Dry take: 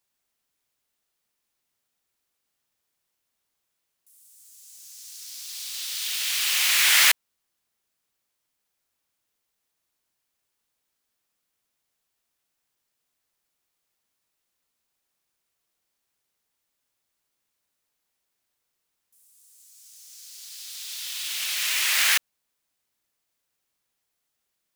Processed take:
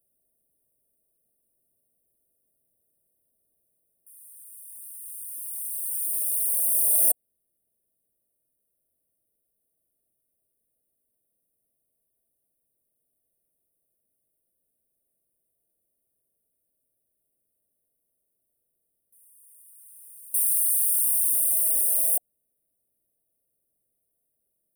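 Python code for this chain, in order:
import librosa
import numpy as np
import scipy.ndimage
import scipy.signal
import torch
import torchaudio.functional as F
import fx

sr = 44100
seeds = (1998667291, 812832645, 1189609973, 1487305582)

p1 = fx.rider(x, sr, range_db=4, speed_s=0.5)
p2 = x + (p1 * librosa.db_to_amplitude(-2.0))
p3 = fx.brickwall_bandstop(p2, sr, low_hz=720.0, high_hz=8500.0)
y = fx.env_flatten(p3, sr, amount_pct=100, at=(20.34, 22.06))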